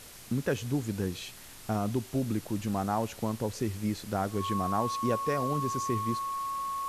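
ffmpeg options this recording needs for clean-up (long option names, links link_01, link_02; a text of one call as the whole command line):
ffmpeg -i in.wav -af "bandreject=frequency=1100:width=30,afwtdn=0.004" out.wav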